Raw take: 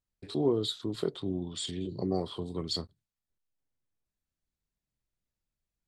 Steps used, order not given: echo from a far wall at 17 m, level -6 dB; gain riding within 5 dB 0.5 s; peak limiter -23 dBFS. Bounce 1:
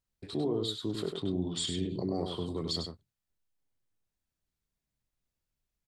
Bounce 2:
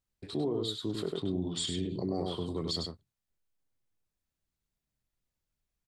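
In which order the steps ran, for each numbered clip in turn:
gain riding > peak limiter > echo from a far wall; echo from a far wall > gain riding > peak limiter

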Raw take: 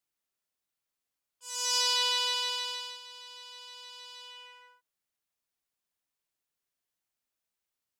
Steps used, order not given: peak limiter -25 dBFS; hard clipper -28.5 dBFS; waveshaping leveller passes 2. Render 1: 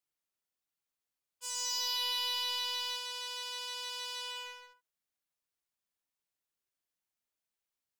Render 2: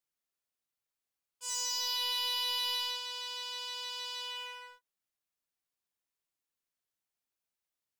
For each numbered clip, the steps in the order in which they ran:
waveshaping leveller > peak limiter > hard clipper; peak limiter > waveshaping leveller > hard clipper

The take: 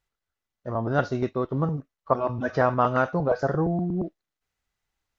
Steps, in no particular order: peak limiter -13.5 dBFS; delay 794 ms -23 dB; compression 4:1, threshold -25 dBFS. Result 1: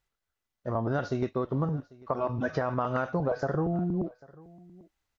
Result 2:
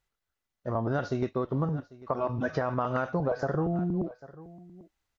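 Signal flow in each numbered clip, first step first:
peak limiter > compression > delay; delay > peak limiter > compression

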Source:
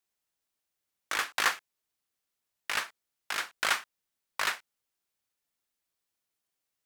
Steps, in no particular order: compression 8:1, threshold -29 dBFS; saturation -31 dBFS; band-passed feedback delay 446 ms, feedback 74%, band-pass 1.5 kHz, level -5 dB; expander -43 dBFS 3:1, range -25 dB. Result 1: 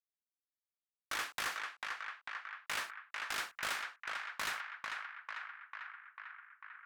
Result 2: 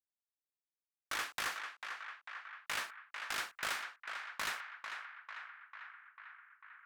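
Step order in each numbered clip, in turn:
compression > expander > band-passed feedback delay > saturation; compression > expander > saturation > band-passed feedback delay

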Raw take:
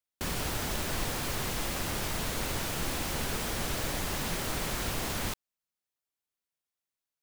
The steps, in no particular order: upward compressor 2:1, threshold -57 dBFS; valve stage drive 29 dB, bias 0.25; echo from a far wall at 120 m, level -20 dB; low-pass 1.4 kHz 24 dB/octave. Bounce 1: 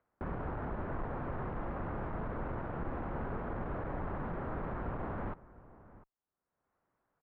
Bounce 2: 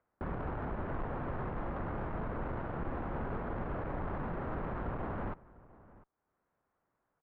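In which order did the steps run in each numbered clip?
echo from a far wall > valve stage > low-pass > upward compressor; low-pass > upward compressor > valve stage > echo from a far wall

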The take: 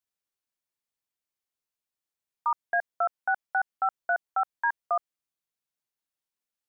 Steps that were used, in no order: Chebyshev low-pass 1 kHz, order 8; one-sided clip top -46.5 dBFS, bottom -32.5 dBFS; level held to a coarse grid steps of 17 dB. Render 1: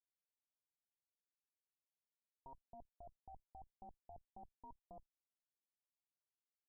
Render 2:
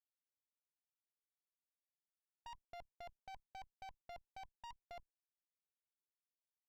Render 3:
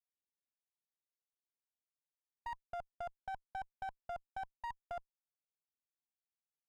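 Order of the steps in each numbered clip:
one-sided clip > level held to a coarse grid > Chebyshev low-pass; Chebyshev low-pass > one-sided clip > level held to a coarse grid; level held to a coarse grid > Chebyshev low-pass > one-sided clip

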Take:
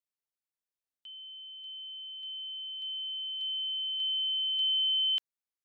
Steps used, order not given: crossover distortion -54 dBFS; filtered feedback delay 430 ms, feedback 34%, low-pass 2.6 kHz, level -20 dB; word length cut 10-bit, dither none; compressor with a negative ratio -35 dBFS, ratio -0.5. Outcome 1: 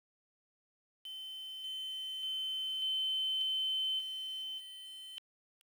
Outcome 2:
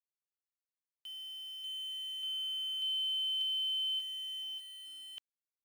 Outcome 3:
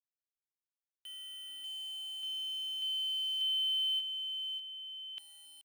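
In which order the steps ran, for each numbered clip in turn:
compressor with a negative ratio > crossover distortion > filtered feedback delay > word length cut; compressor with a negative ratio > filtered feedback delay > word length cut > crossover distortion; filtered feedback delay > crossover distortion > word length cut > compressor with a negative ratio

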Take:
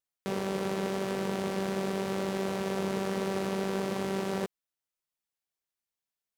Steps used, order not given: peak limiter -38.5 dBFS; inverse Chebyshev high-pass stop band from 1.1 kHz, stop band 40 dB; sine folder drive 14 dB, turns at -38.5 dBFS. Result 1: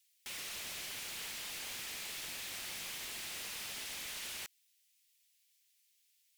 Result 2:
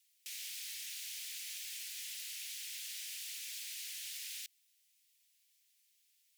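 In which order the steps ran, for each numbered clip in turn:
inverse Chebyshev high-pass > sine folder > peak limiter; sine folder > peak limiter > inverse Chebyshev high-pass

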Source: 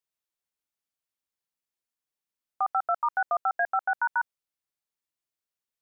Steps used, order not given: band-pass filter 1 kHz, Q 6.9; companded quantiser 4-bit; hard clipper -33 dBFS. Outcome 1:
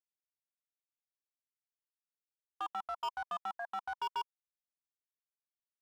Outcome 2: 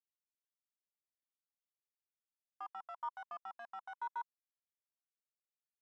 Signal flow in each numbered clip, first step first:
companded quantiser > band-pass filter > hard clipper; hard clipper > companded quantiser > band-pass filter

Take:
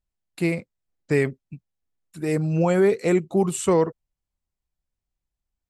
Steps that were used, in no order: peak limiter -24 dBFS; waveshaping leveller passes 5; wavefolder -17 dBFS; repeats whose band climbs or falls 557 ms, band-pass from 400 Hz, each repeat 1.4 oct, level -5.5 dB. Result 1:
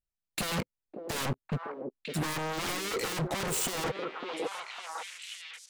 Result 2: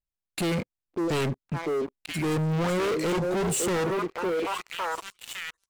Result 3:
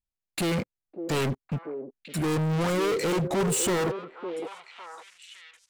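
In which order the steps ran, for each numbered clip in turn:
waveshaping leveller > wavefolder > repeats whose band climbs or falls > peak limiter; wavefolder > repeats whose band climbs or falls > waveshaping leveller > peak limiter; wavefolder > waveshaping leveller > peak limiter > repeats whose band climbs or falls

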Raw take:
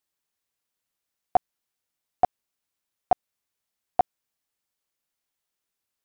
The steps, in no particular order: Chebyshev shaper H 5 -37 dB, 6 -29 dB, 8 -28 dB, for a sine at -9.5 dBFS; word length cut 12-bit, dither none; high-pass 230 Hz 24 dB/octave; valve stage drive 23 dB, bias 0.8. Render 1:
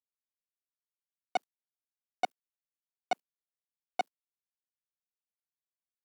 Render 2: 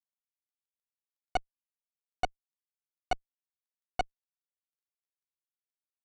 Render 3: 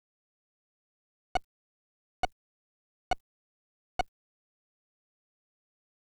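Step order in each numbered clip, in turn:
Chebyshev shaper > valve stage > word length cut > high-pass; word length cut > Chebyshev shaper > high-pass > valve stage; Chebyshev shaper > high-pass > valve stage > word length cut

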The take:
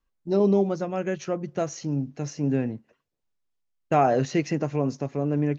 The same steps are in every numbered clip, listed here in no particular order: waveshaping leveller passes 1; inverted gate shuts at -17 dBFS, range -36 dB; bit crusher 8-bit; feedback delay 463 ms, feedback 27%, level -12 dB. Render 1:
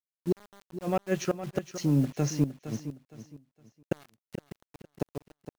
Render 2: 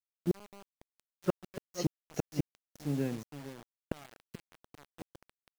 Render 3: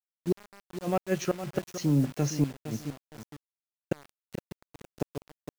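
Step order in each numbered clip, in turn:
inverted gate > waveshaping leveller > bit crusher > feedback delay; feedback delay > waveshaping leveller > inverted gate > bit crusher; inverted gate > feedback delay > bit crusher > waveshaping leveller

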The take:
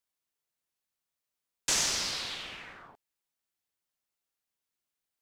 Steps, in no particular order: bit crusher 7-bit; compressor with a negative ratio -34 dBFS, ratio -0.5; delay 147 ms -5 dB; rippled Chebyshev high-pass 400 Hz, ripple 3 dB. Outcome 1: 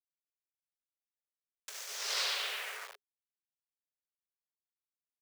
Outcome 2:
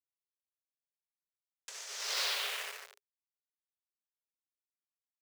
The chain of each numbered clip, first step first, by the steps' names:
delay > compressor with a negative ratio > bit crusher > rippled Chebyshev high-pass; bit crusher > delay > compressor with a negative ratio > rippled Chebyshev high-pass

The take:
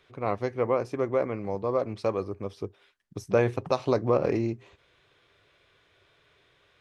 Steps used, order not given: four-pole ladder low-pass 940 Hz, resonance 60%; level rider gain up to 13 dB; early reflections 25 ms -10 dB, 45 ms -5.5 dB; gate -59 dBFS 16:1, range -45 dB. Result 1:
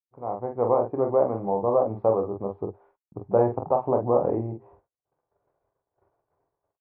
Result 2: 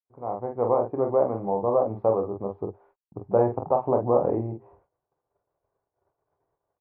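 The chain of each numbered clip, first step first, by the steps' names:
level rider > four-pole ladder low-pass > gate > early reflections; early reflections > gate > level rider > four-pole ladder low-pass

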